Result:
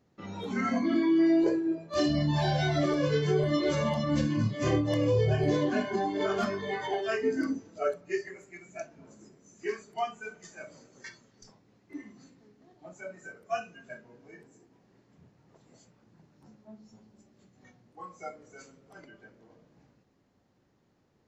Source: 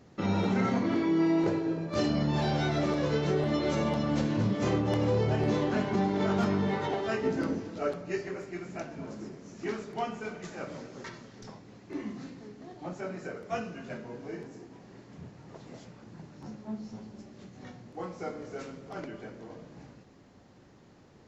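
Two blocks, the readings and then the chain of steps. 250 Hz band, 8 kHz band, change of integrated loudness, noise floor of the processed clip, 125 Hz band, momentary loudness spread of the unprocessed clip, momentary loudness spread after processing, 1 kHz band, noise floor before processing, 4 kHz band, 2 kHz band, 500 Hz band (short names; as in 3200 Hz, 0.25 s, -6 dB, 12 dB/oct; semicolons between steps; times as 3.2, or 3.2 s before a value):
0.0 dB, n/a, +2.5 dB, -70 dBFS, 0.0 dB, 21 LU, 21 LU, 0.0 dB, -57 dBFS, +1.5 dB, +1.5 dB, +1.0 dB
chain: spectral noise reduction 16 dB; gain +3 dB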